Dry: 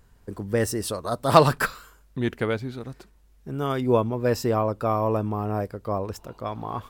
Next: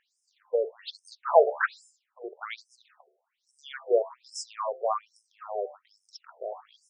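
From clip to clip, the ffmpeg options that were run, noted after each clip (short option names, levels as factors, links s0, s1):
-af "bandreject=f=74.54:t=h:w=4,bandreject=f=149.08:t=h:w=4,bandreject=f=223.62:t=h:w=4,bandreject=f=298.16:t=h:w=4,bandreject=f=372.7:t=h:w=4,bandreject=f=447.24:t=h:w=4,bandreject=f=521.78:t=h:w=4,bandreject=f=596.32:t=h:w=4,bandreject=f=670.86:t=h:w=4,bandreject=f=745.4:t=h:w=4,bandreject=f=819.94:t=h:w=4,bandreject=f=894.48:t=h:w=4,bandreject=f=969.02:t=h:w=4,bandreject=f=1043.56:t=h:w=4,bandreject=f=1118.1:t=h:w=4,bandreject=f=1192.64:t=h:w=4,bandreject=f=1267.18:t=h:w=4,afftfilt=real='re*between(b*sr/1024,510*pow(7200/510,0.5+0.5*sin(2*PI*1.2*pts/sr))/1.41,510*pow(7200/510,0.5+0.5*sin(2*PI*1.2*pts/sr))*1.41)':imag='im*between(b*sr/1024,510*pow(7200/510,0.5+0.5*sin(2*PI*1.2*pts/sr))/1.41,510*pow(7200/510,0.5+0.5*sin(2*PI*1.2*pts/sr))*1.41)':win_size=1024:overlap=0.75"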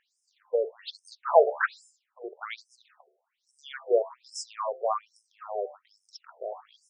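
-af anull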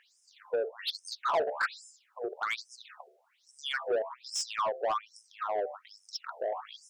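-filter_complex "[0:a]acompressor=threshold=0.0126:ratio=2,asplit=2[s0][s1];[s1]highpass=f=720:p=1,volume=7.08,asoftclip=type=tanh:threshold=0.0944[s2];[s0][s2]amix=inputs=2:normalize=0,lowpass=f=6700:p=1,volume=0.501"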